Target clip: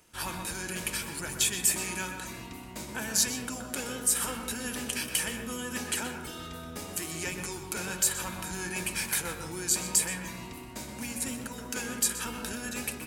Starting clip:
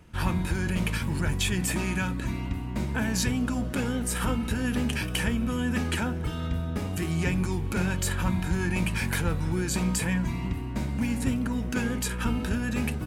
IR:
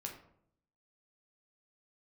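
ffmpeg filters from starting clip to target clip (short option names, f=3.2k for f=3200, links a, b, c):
-filter_complex "[0:a]bass=f=250:g=-14,treble=f=4k:g=13,asplit=2[a][b];[1:a]atrim=start_sample=2205,highshelf=f=4k:g=-10,adelay=124[c];[b][c]afir=irnorm=-1:irlink=0,volume=-2.5dB[d];[a][d]amix=inputs=2:normalize=0,volume=-5dB"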